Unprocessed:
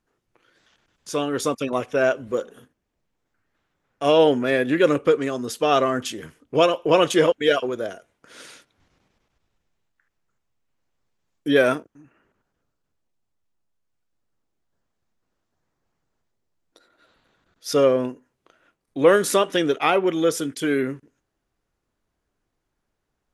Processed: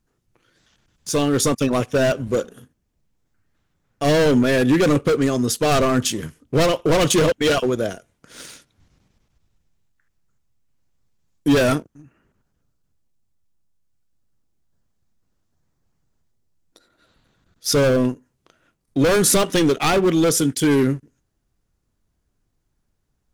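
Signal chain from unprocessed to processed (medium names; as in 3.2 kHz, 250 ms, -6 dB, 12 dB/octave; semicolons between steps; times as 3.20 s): waveshaping leveller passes 1; hard clipper -15.5 dBFS, distortion -9 dB; tone controls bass +11 dB, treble +7 dB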